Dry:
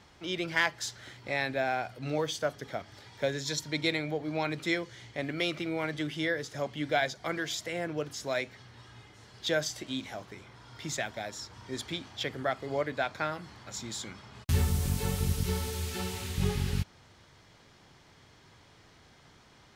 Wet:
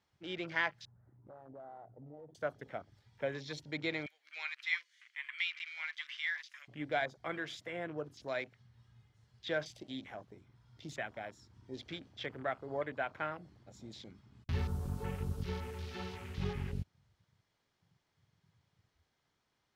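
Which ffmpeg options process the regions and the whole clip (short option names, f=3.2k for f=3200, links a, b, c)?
-filter_complex "[0:a]asettb=1/sr,asplit=3[a][b][c];[a]atrim=end=0.854[d];[b]atrim=start=0.85:end=2.35,asetpts=PTS-STARTPTS,afade=t=in:d=0.004:c=qsin,afade=t=out:st=1.496:d=0.004:c=qsin,lowpass=f=1.1k:w=0.5412,lowpass=f=1.1k:w=1.3066,acompressor=threshold=-41dB:ratio=5:attack=3.2:release=140:knee=1:detection=peak,aeval=exprs='clip(val(0),-1,0.00841)':c=same[e];[c]atrim=start=2.346[f];[d][e]acrossfade=d=0.004:c1=hsin:c2=qsin[g];[g][f]acrossfade=d=0.004:c1=qsin:c2=hsin,asettb=1/sr,asplit=3[h][i][j];[h]atrim=end=4.064[k];[i]atrim=start=4.06:end=6.68,asetpts=PTS-STARTPTS,afade=t=in:d=0.004:c=qsin,afade=t=out:st=2.616:d=0.004:c=qsin,highpass=f=2.1k:t=q:w=1.7,highshelf=f=5.5k:g=5.5[l];[j]atrim=start=6.676[m];[k][l]acrossfade=d=0.004:c1=hsin:c2=qsin[n];[n][m]acrossfade=d=0.004:c1=qsin:c2=hsin,afwtdn=0.00708,acrossover=split=3400[o][p];[p]acompressor=threshold=-50dB:ratio=4:attack=1:release=60[q];[o][q]amix=inputs=2:normalize=0,lowshelf=f=380:g=-3.5,volume=-5dB"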